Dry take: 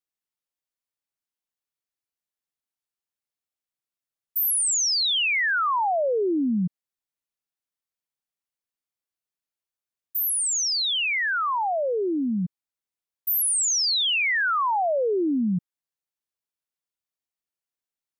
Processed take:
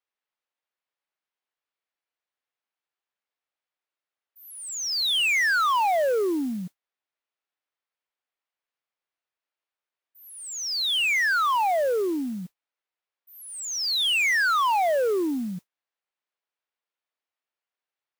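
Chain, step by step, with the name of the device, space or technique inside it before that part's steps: carbon microphone (band-pass 450–3000 Hz; saturation -26.5 dBFS, distortion -14 dB; modulation noise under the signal 23 dB); trim +6.5 dB

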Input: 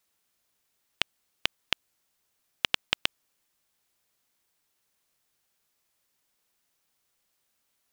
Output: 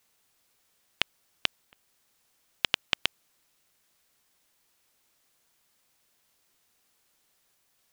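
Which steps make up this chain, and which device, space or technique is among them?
worn cassette (low-pass 9.5 kHz; wow and flutter; level dips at 1.65/7.55 s, 235 ms -28 dB; white noise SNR 30 dB)

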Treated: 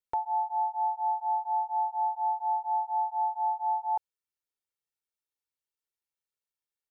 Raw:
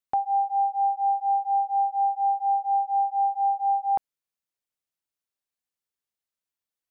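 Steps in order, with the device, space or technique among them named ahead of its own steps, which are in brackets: ring-modulated robot voice (ring modulator 80 Hz; comb 2.2 ms, depth 70%); trim -4 dB

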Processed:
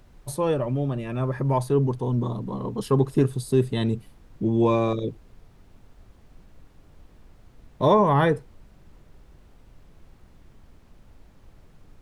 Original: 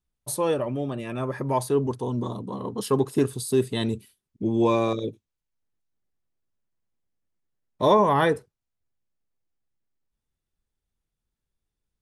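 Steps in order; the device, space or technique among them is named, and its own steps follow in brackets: car interior (peaking EQ 140 Hz +7.5 dB 0.79 oct; treble shelf 4.3 kHz -8 dB; brown noise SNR 22 dB)

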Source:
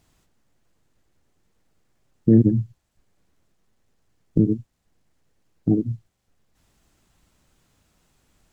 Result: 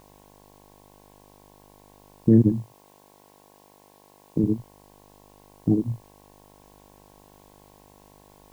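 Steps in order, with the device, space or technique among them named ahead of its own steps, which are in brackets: video cassette with head-switching buzz (mains buzz 50 Hz, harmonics 22, -53 dBFS -1 dB/octave; white noise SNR 33 dB); 2.52–4.44 s: high-pass 260 Hz 6 dB/octave; trim -1.5 dB

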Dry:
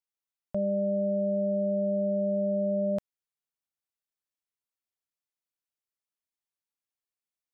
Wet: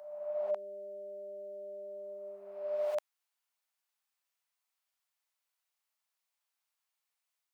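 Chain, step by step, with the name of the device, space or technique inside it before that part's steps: ghost voice (reverse; reverberation RT60 1.6 s, pre-delay 37 ms, DRR -2 dB; reverse; high-pass 670 Hz 24 dB/octave); trim +4 dB

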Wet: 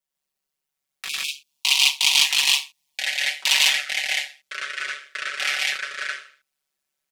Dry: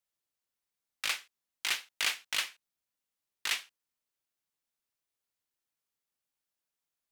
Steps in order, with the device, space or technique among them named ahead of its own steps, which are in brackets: 1.09–1.49 s: spectral selection erased 420–2200 Hz; 1.13–3.59 s: FFT filter 100 Hz 0 dB, 180 Hz +7 dB, 520 Hz -9 dB, 980 Hz +13 dB, 1.5 kHz -23 dB, 2.5 kHz +11 dB, 4.4 kHz +12 dB, 15 kHz +7 dB; loudspeakers at several distances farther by 36 m -2 dB, 51 m 0 dB; ever faster or slower copies 788 ms, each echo -5 st, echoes 2, each echo -6 dB; ring-modulated robot voice (ring modulator 71 Hz; comb 5.3 ms, depth 75%); trim +2.5 dB

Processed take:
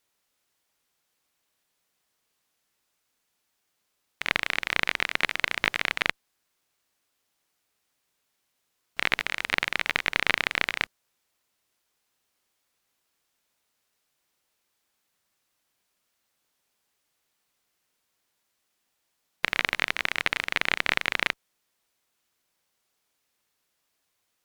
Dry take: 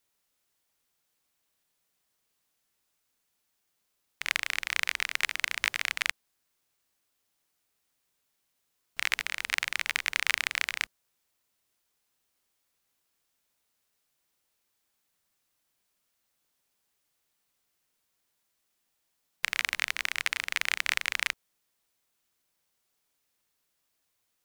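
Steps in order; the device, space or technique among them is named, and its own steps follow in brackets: tube preamp driven hard (valve stage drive 8 dB, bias 0.6; bass shelf 200 Hz -3.5 dB; treble shelf 6.9 kHz -5 dB); trim +7 dB

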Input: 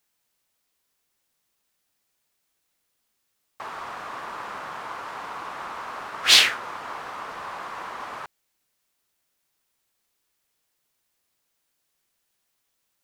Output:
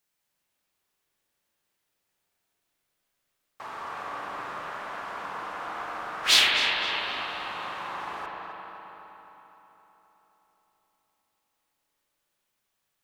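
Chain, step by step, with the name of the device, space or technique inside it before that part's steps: dub delay into a spring reverb (filtered feedback delay 260 ms, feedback 66%, low-pass 3.2 kHz, level -7 dB; spring tank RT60 3 s, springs 38/45 ms, chirp 30 ms, DRR -1 dB); trim -5 dB

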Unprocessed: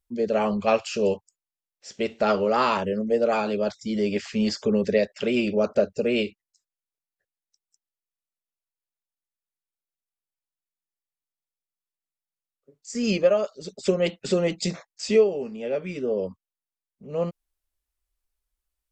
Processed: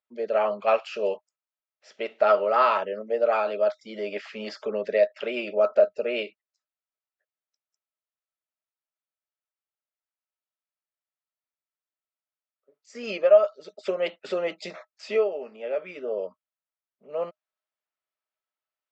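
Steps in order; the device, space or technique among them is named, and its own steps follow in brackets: tin-can telephone (band-pass 550–2800 Hz; small resonant body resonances 620/1300 Hz, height 11 dB, ringing for 90 ms)

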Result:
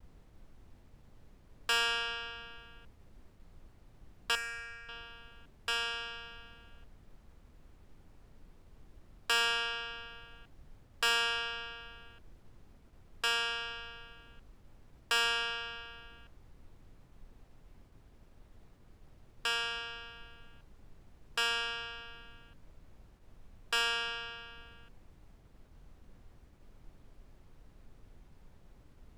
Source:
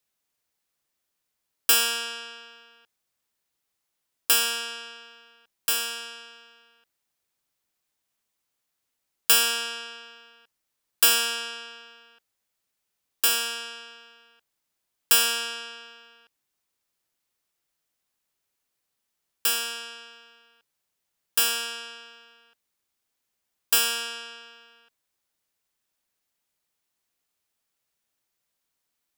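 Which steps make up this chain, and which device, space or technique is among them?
aircraft cabin announcement (band-pass 430–3000 Hz; saturation -23 dBFS, distortion -14 dB; brown noise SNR 14 dB); expander -56 dBFS; 4.35–4.89 s: FFT filter 120 Hz 0 dB, 340 Hz -14 dB, 610 Hz -11 dB, 950 Hz -18 dB, 2.2 kHz +3 dB, 3.2 kHz -26 dB, 6.4 kHz -4 dB

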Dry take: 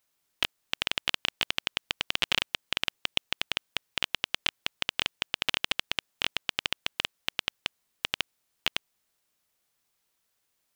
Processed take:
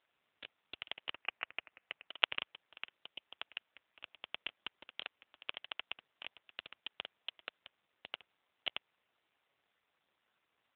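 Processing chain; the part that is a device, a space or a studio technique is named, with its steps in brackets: 1.10–2.08 s: steep low-pass 2.8 kHz 72 dB/octave; telephone (band-pass 370–3200 Hz; saturation -10 dBFS, distortion -20 dB; trim +7.5 dB; AMR-NB 7.4 kbps 8 kHz)

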